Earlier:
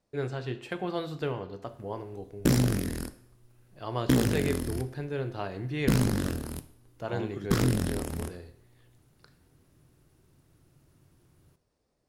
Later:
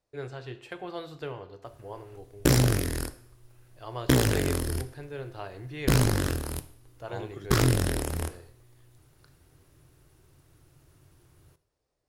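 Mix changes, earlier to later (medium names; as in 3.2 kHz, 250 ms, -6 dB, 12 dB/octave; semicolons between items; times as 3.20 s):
first voice -3.5 dB; background +5.5 dB; master: add peaking EQ 210 Hz -12 dB 0.7 oct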